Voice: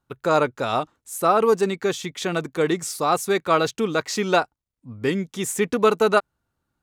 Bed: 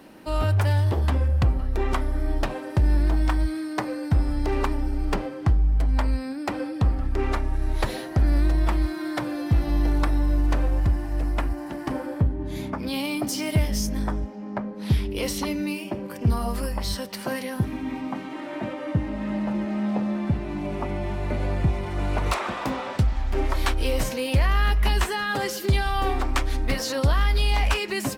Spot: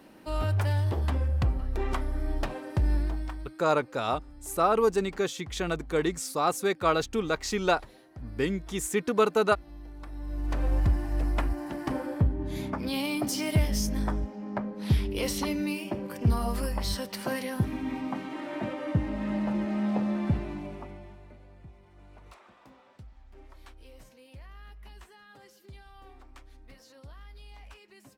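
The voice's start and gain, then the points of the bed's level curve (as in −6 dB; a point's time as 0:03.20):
3.35 s, −5.5 dB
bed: 0:02.95 −5.5 dB
0:03.67 −23 dB
0:09.95 −23 dB
0:10.72 −2.5 dB
0:20.37 −2.5 dB
0:21.45 −27.5 dB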